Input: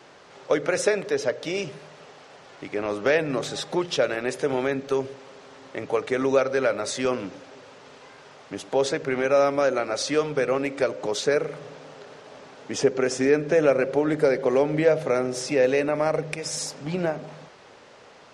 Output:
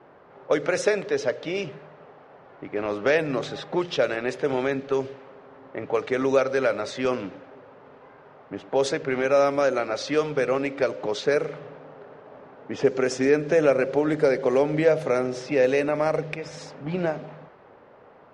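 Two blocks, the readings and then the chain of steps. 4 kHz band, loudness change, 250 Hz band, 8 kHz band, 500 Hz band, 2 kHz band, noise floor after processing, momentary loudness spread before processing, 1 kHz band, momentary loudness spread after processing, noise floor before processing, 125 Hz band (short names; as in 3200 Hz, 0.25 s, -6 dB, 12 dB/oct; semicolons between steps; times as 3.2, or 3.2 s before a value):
-3.0 dB, 0.0 dB, 0.0 dB, -6.5 dB, 0.0 dB, 0.0 dB, -51 dBFS, 15 LU, 0.0 dB, 14 LU, -49 dBFS, 0.0 dB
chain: low-pass opened by the level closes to 1200 Hz, open at -17 dBFS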